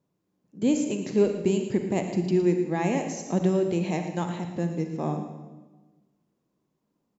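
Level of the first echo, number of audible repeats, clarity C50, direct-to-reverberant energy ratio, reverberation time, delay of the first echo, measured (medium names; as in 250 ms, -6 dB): -12.0 dB, 1, 6.0 dB, 5.0 dB, 1.2 s, 113 ms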